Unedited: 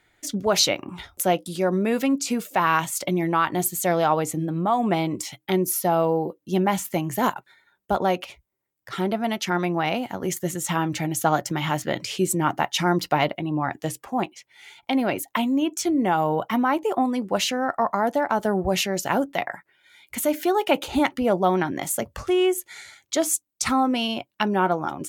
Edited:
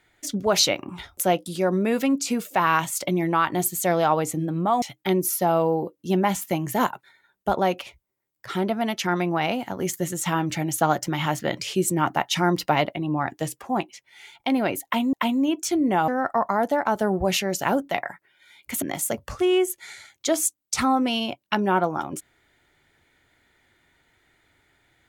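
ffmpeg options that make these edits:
-filter_complex "[0:a]asplit=5[s0][s1][s2][s3][s4];[s0]atrim=end=4.822[s5];[s1]atrim=start=5.248:end=15.562[s6];[s2]atrim=start=15.268:end=16.222[s7];[s3]atrim=start=17.518:end=20.262[s8];[s4]atrim=start=21.698[s9];[s5][s6]acrossfade=d=0.004:c1=hsin:c2=hsin[s10];[s10][s7]acrossfade=d=0.004:c1=hsin:c2=hsin[s11];[s11][s8]acrossfade=d=0.004:c1=hsin:c2=hsin[s12];[s12][s9]acrossfade=d=0.004:c1=hsin:c2=hsin"

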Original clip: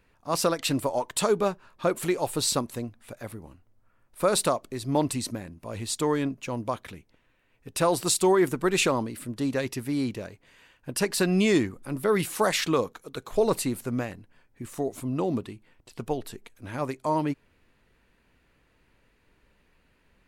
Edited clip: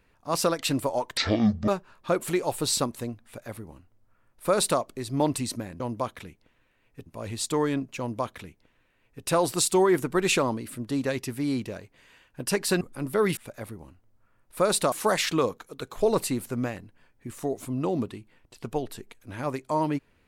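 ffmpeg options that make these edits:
-filter_complex "[0:a]asplit=8[s0][s1][s2][s3][s4][s5][s6][s7];[s0]atrim=end=1.174[s8];[s1]atrim=start=1.17:end=1.43,asetpts=PTS-STARTPTS,asetrate=22491,aresample=44100,atrim=end_sample=22482,asetpts=PTS-STARTPTS[s9];[s2]atrim=start=1.426:end=5.552[s10];[s3]atrim=start=6.478:end=7.742[s11];[s4]atrim=start=5.548:end=11.302[s12];[s5]atrim=start=11.708:end=12.272[s13];[s6]atrim=start=2.998:end=4.552[s14];[s7]atrim=start=12.268[s15];[s8][s9]acrossfade=d=0.004:c1=hsin:c2=hsin[s16];[s16][s10]acrossfade=d=0.004:c1=hsin:c2=hsin[s17];[s17][s11]acrossfade=d=0.004:c1=hsin:c2=hsin[s18];[s18][s12]acrossfade=d=0.004:c1=hsin:c2=hsin[s19];[s19][s13]acrossfade=d=0.004:c1=hsin:c2=hsin[s20];[s20][s14]acrossfade=d=0.004:c1=hsin:c2=hsin[s21];[s21][s15]acrossfade=d=0.004:c1=hsin:c2=hsin"

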